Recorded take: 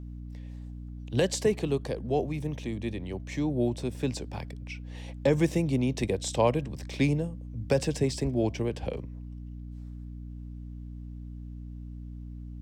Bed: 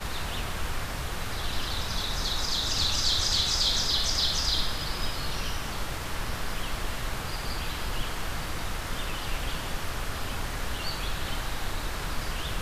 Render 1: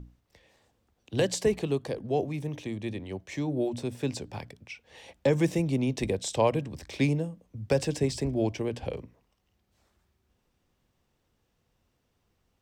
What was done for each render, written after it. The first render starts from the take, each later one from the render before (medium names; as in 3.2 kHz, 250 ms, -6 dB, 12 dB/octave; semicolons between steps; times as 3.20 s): hum notches 60/120/180/240/300 Hz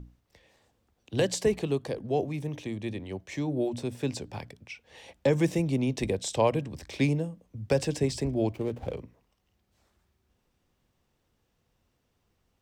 8.51–8.93 s: median filter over 25 samples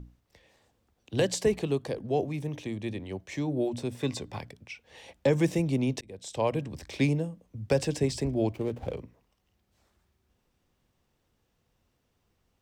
3.96–4.39 s: small resonant body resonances 1.1/2/3.6 kHz, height 12 dB; 6.01–6.67 s: fade in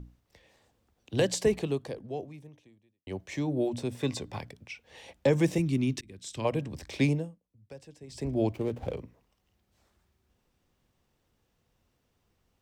1.56–3.07 s: fade out quadratic; 5.58–6.45 s: high-order bell 650 Hz -13 dB 1.3 oct; 7.11–8.36 s: dip -21.5 dB, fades 0.29 s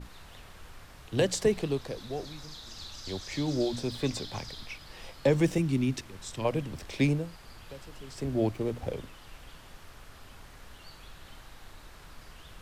add bed -17.5 dB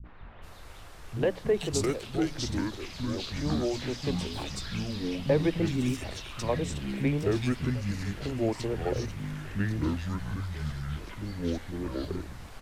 ever faster or slower copies 208 ms, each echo -5 st, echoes 3; three bands offset in time lows, mids, highs 40/420 ms, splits 200/2600 Hz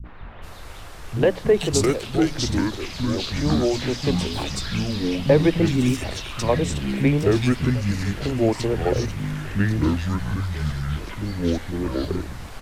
trim +8.5 dB